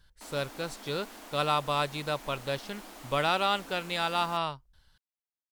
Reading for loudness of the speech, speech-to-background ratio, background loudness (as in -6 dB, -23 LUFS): -31.0 LUFS, 16.0 dB, -47.0 LUFS